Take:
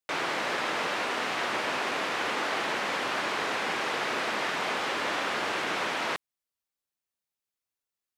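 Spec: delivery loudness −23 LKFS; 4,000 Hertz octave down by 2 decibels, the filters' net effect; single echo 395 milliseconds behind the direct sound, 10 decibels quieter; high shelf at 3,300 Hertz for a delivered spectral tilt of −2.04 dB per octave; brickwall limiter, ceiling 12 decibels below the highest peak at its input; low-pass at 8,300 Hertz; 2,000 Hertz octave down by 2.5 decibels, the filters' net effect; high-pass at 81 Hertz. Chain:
high-pass filter 81 Hz
low-pass filter 8,300 Hz
parametric band 2,000 Hz −3.5 dB
high-shelf EQ 3,300 Hz +4 dB
parametric band 4,000 Hz −4 dB
brickwall limiter −29.5 dBFS
single-tap delay 395 ms −10 dB
level +14 dB

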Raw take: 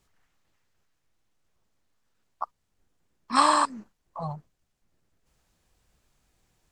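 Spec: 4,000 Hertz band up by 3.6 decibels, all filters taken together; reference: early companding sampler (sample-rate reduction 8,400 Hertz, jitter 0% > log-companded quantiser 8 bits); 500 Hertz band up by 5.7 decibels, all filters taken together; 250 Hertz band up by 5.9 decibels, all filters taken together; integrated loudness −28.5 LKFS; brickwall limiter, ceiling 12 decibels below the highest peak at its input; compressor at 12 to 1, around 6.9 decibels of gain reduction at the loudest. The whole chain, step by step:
parametric band 250 Hz +5 dB
parametric band 500 Hz +6.5 dB
parametric band 4,000 Hz +4 dB
downward compressor 12 to 1, threshold −20 dBFS
brickwall limiter −24 dBFS
sample-rate reduction 8,400 Hz, jitter 0%
log-companded quantiser 8 bits
level +8 dB

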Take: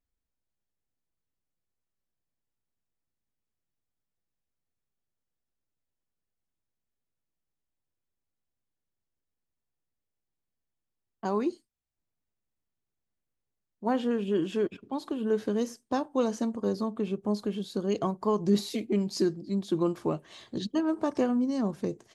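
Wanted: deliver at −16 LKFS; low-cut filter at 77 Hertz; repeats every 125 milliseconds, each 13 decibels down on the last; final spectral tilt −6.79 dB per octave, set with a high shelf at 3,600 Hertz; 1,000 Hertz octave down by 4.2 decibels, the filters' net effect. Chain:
high-pass filter 77 Hz
parametric band 1,000 Hz −5 dB
high-shelf EQ 3,600 Hz −4.5 dB
repeating echo 125 ms, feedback 22%, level −13 dB
level +14.5 dB

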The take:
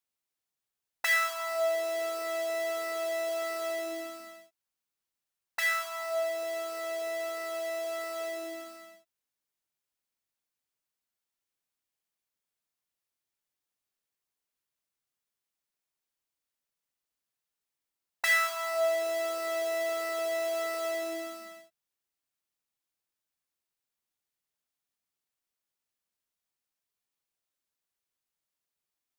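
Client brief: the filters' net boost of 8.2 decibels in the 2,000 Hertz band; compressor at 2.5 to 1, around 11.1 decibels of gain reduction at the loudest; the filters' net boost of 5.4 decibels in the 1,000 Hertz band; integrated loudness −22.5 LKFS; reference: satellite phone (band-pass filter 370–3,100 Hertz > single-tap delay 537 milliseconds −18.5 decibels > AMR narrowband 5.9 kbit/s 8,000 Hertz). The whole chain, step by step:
parametric band 1,000 Hz +5.5 dB
parametric band 2,000 Hz +8 dB
downward compressor 2.5 to 1, threshold −31 dBFS
band-pass filter 370–3,100 Hz
single-tap delay 537 ms −18.5 dB
level +10.5 dB
AMR narrowband 5.9 kbit/s 8,000 Hz

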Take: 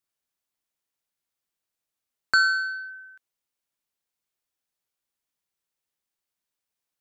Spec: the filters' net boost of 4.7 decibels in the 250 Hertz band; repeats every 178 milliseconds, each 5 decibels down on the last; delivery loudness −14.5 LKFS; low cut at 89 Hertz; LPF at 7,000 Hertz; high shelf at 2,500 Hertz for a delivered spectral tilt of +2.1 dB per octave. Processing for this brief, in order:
high-pass filter 89 Hz
low-pass filter 7,000 Hz
parametric band 250 Hz +6 dB
high-shelf EQ 2,500 Hz +6 dB
repeating echo 178 ms, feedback 56%, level −5 dB
level +6.5 dB

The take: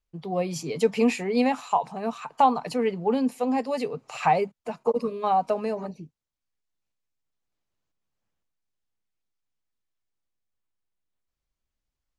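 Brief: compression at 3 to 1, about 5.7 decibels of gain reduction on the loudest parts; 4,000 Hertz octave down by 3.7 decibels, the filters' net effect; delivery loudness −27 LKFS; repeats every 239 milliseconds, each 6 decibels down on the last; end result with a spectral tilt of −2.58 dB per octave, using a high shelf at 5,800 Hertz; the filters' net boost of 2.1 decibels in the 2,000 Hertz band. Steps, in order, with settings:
parametric band 2,000 Hz +5 dB
parametric band 4,000 Hz −4.5 dB
high-shelf EQ 5,800 Hz −7 dB
downward compressor 3 to 1, threshold −22 dBFS
repeating echo 239 ms, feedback 50%, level −6 dB
level +0.5 dB

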